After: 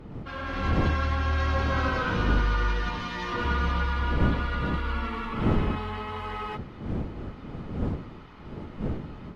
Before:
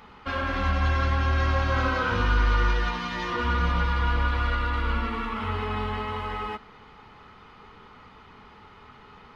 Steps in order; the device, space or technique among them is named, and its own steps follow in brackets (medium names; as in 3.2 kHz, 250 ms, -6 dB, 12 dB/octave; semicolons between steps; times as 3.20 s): smartphone video outdoors (wind noise 240 Hz -29 dBFS; level rider gain up to 7.5 dB; trim -9 dB; AAC 64 kbps 32 kHz)